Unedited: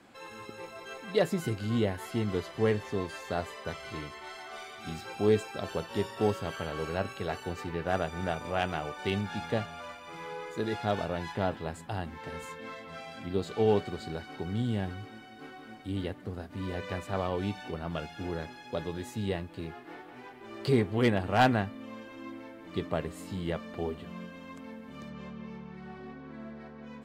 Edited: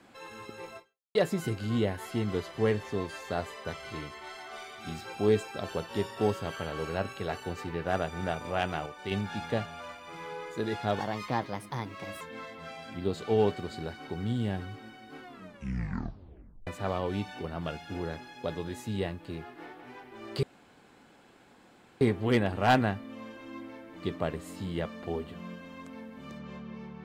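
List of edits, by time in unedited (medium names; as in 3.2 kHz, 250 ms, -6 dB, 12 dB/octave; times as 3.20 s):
0.77–1.15 s: fade out exponential
8.86–9.11 s: gain -5 dB
11.00–12.50 s: speed 124%
15.51 s: tape stop 1.45 s
20.72 s: insert room tone 1.58 s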